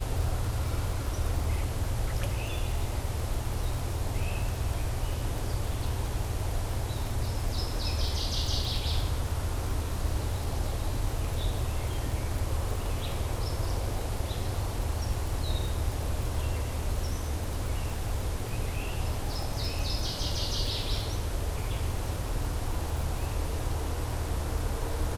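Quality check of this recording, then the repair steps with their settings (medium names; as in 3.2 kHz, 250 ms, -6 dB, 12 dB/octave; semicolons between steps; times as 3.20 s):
crackle 44 per s -33 dBFS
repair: de-click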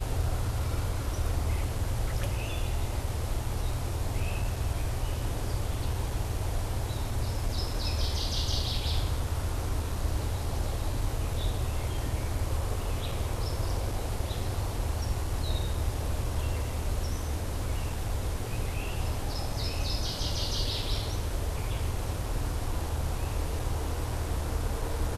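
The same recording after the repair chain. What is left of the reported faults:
nothing left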